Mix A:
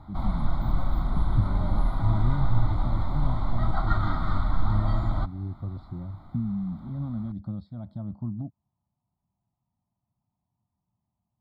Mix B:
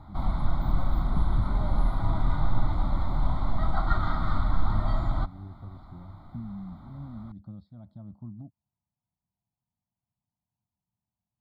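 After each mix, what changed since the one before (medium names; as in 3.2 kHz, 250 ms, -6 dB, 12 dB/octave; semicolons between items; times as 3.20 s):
speech -9.0 dB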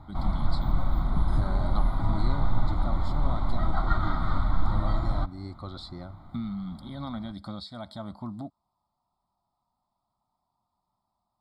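speech: remove band-pass filter 120 Hz, Q 1.4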